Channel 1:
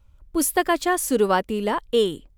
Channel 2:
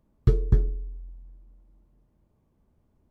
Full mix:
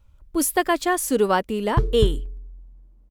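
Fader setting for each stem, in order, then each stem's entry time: 0.0 dB, -0.5 dB; 0.00 s, 1.50 s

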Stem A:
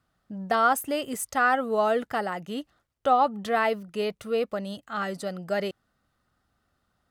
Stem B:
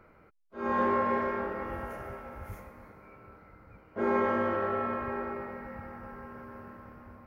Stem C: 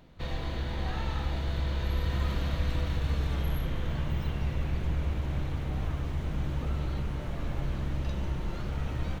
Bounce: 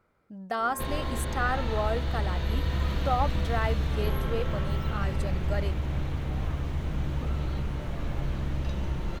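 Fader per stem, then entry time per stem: -6.5 dB, -12.0 dB, +1.5 dB; 0.00 s, 0.00 s, 0.60 s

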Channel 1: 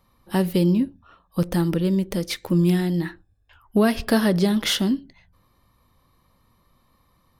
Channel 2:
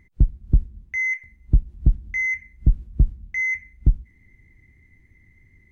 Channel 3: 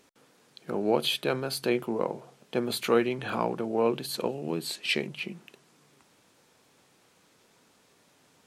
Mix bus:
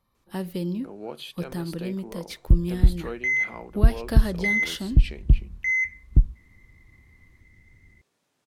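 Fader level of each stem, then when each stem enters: -10.0 dB, 0.0 dB, -11.5 dB; 0.00 s, 2.30 s, 0.15 s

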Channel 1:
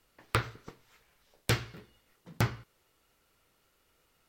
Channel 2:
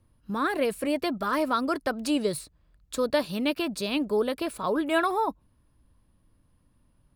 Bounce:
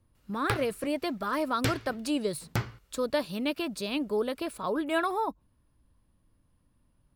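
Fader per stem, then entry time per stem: -1.5 dB, -3.5 dB; 0.15 s, 0.00 s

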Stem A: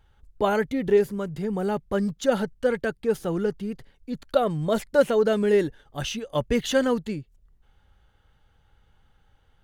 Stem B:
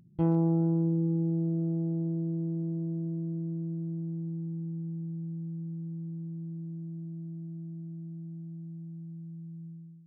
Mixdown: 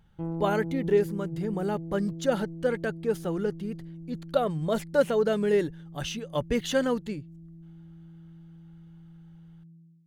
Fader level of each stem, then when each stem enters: -3.5 dB, -7.5 dB; 0.00 s, 0.00 s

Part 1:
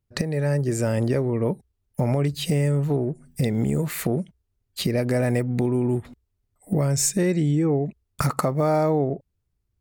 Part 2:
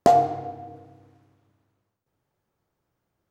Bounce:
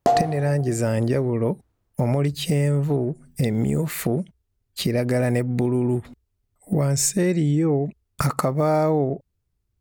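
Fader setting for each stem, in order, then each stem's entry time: +1.0 dB, -2.0 dB; 0.00 s, 0.00 s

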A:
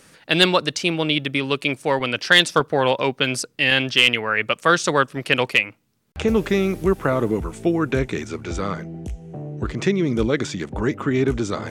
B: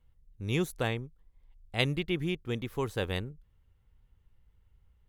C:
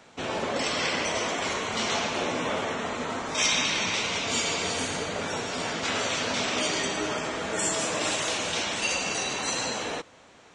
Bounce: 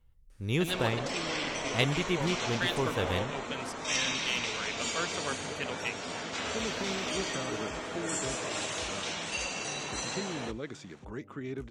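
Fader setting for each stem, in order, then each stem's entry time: -18.5 dB, +0.5 dB, -7.0 dB; 0.30 s, 0.00 s, 0.50 s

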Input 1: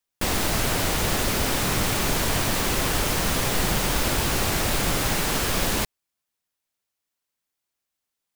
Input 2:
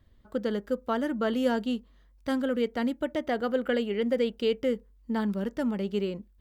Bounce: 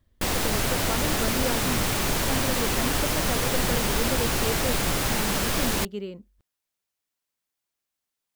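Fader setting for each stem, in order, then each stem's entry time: -1.5 dB, -4.5 dB; 0.00 s, 0.00 s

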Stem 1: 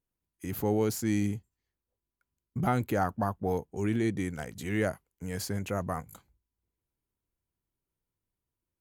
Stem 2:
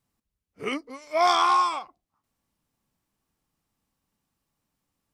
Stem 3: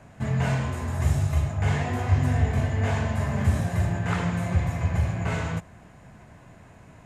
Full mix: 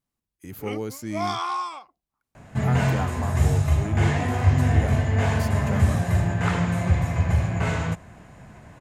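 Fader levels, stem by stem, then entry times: -3.5 dB, -7.0 dB, +3.0 dB; 0.00 s, 0.00 s, 2.35 s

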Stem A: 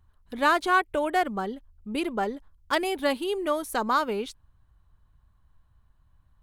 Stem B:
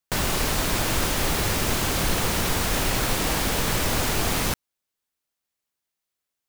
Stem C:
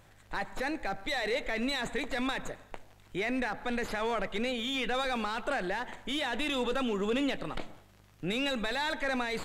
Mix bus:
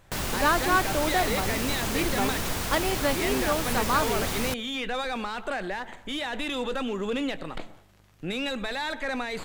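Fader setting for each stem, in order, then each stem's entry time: -1.5 dB, -6.0 dB, +1.0 dB; 0.00 s, 0.00 s, 0.00 s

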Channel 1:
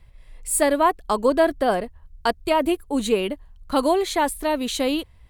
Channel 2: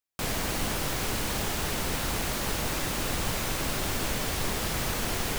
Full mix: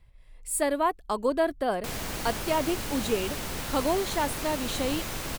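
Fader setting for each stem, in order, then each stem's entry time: -7.0 dB, -4.0 dB; 0.00 s, 1.65 s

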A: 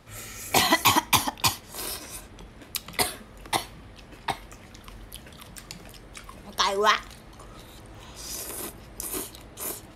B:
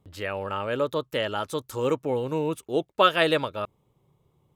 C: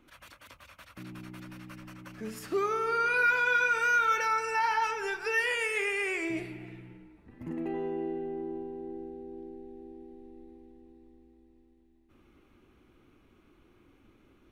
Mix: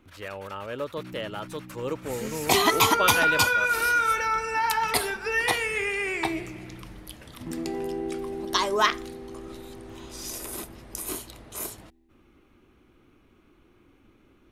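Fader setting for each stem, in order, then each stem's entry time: -1.0 dB, -6.5 dB, +2.5 dB; 1.95 s, 0.00 s, 0.00 s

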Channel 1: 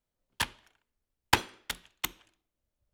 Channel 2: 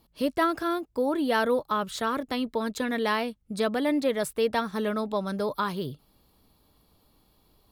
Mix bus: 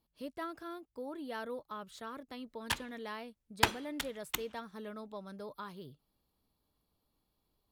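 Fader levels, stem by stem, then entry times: -3.5 dB, -16.5 dB; 2.30 s, 0.00 s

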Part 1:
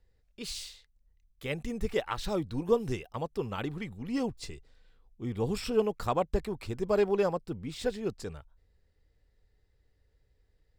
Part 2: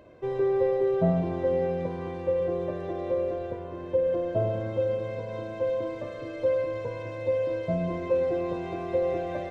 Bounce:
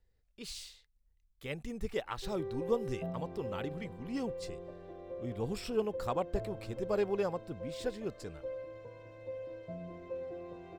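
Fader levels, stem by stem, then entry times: -5.5 dB, -16.0 dB; 0.00 s, 2.00 s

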